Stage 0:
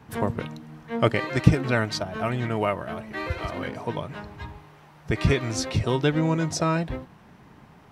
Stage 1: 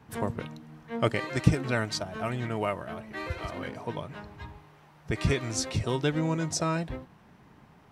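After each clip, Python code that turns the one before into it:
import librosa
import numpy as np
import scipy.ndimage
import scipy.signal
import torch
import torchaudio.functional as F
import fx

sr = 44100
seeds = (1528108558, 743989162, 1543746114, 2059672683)

y = fx.dynamic_eq(x, sr, hz=8200.0, q=0.96, threshold_db=-50.0, ratio=4.0, max_db=7)
y = F.gain(torch.from_numpy(y), -5.0).numpy()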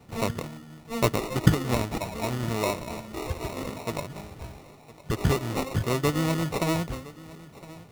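y = fx.sample_hold(x, sr, seeds[0], rate_hz=1600.0, jitter_pct=0)
y = fx.vibrato(y, sr, rate_hz=9.7, depth_cents=29.0)
y = fx.echo_feedback(y, sr, ms=1011, feedback_pct=32, wet_db=-19.5)
y = F.gain(torch.from_numpy(y), 2.5).numpy()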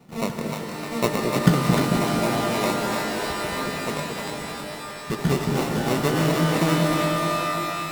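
y = fx.low_shelf_res(x, sr, hz=130.0, db=-7.0, q=3.0)
y = fx.echo_split(y, sr, split_hz=530.0, low_ms=221, high_ms=304, feedback_pct=52, wet_db=-4)
y = fx.rev_shimmer(y, sr, seeds[1], rt60_s=3.4, semitones=12, shimmer_db=-2, drr_db=6.0)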